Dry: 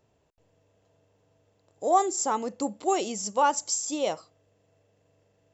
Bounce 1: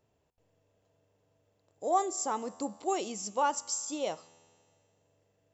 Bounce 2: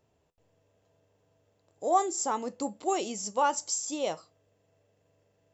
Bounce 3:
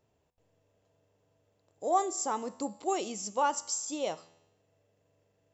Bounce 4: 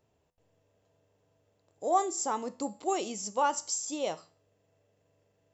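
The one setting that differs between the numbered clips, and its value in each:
resonator, decay: 2.2, 0.16, 0.96, 0.43 s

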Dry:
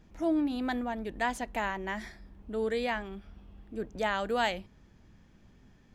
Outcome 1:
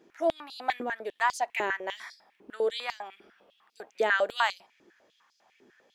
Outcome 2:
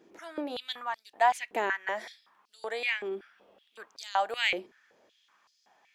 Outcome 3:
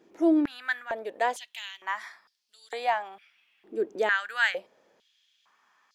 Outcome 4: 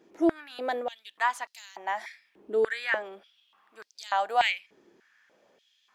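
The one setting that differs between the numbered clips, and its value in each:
stepped high-pass, rate: 10, 5.3, 2.2, 3.4 Hz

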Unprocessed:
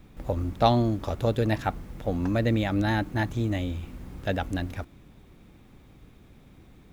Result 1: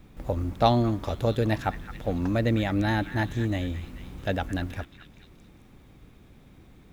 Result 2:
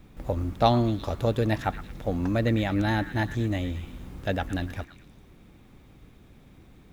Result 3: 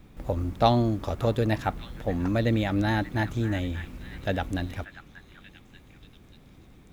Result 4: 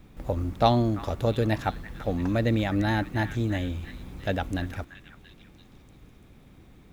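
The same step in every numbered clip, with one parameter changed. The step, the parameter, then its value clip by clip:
delay with a stepping band-pass, time: 0.217, 0.113, 0.585, 0.339 s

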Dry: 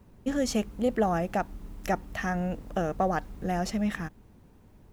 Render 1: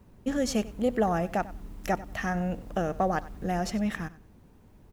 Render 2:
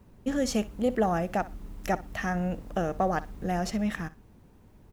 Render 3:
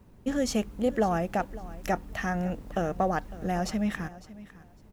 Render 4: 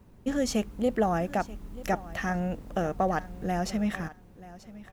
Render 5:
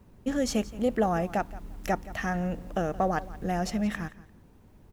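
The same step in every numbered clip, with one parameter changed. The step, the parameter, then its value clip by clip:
feedback echo, time: 94, 61, 554, 934, 173 ms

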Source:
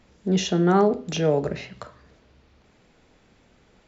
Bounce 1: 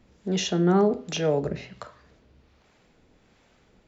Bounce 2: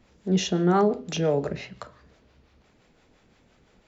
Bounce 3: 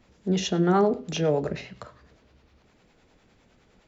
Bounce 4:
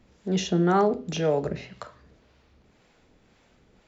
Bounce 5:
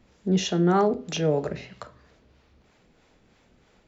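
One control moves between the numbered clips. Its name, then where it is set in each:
harmonic tremolo, rate: 1.3, 5.8, 9.8, 1.9, 3.1 Hz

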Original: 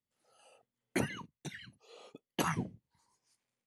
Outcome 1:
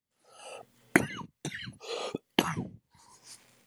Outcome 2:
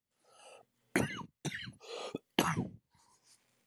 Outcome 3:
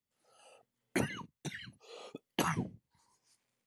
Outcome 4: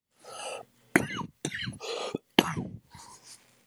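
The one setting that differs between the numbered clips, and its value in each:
recorder AGC, rising by: 35, 14, 5.2, 90 dB/s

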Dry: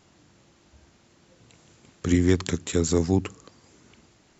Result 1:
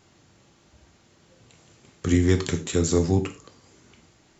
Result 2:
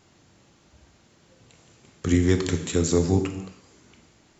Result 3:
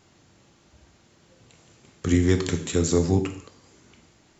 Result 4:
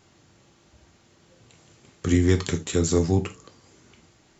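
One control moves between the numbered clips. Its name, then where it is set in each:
non-linear reverb, gate: 0.14, 0.36, 0.24, 0.1 s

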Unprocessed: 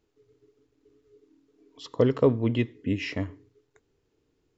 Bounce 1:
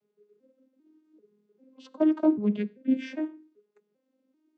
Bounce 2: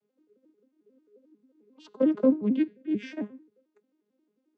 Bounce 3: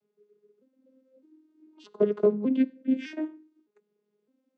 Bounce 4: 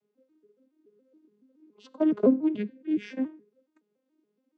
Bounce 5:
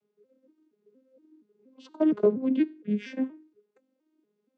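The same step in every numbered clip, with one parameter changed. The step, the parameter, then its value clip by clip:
arpeggiated vocoder, a note every: 394, 89, 610, 141, 235 ms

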